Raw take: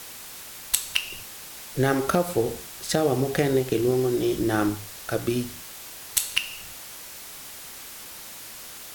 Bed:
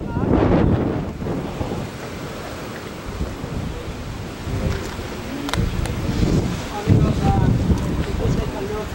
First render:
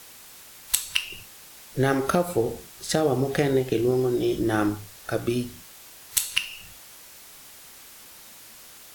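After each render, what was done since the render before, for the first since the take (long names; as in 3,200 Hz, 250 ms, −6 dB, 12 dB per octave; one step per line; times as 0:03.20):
noise reduction from a noise print 6 dB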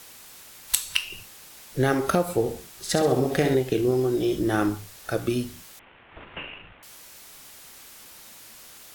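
0:02.78–0:03.55: flutter between parallel walls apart 11.3 metres, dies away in 0.55 s
0:05.79–0:06.83: variable-slope delta modulation 16 kbit/s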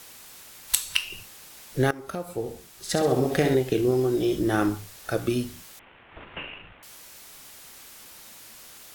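0:01.91–0:03.25: fade in, from −18.5 dB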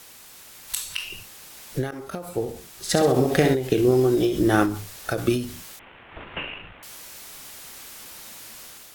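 automatic gain control gain up to 5 dB
every ending faded ahead of time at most 100 dB per second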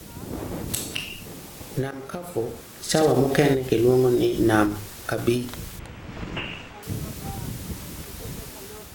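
mix in bed −16.5 dB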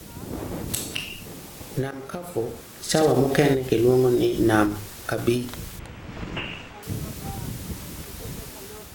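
no processing that can be heard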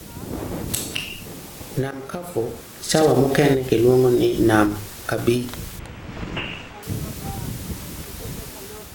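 level +3 dB
brickwall limiter −3 dBFS, peak gain reduction 2 dB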